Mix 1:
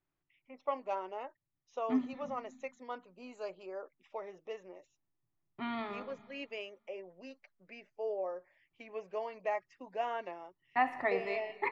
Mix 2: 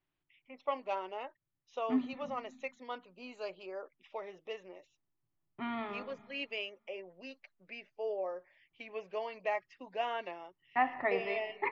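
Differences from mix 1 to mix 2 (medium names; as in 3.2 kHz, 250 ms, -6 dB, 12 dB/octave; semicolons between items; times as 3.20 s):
first voice: remove low-pass 1.9 kHz 12 dB/octave; master: add low-pass 3.4 kHz 24 dB/octave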